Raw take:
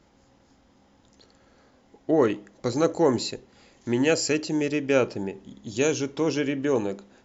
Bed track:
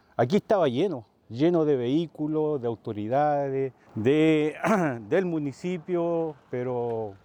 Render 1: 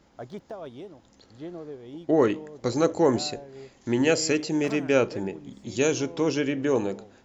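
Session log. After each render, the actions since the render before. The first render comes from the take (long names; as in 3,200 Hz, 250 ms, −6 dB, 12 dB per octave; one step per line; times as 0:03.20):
mix in bed track −16.5 dB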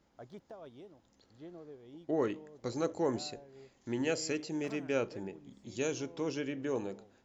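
level −11 dB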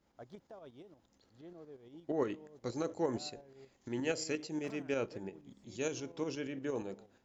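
shaped tremolo saw up 8.5 Hz, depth 55%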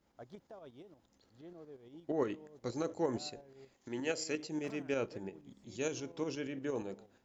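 0:03.74–0:04.33: low-shelf EQ 170 Hz −9 dB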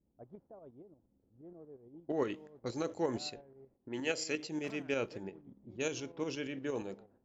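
low-pass that shuts in the quiet parts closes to 310 Hz, open at −35.5 dBFS
dynamic equaliser 2,900 Hz, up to +5 dB, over −55 dBFS, Q 1.1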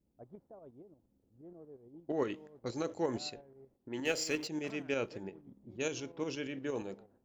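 0:04.05–0:04.48: mu-law and A-law mismatch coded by mu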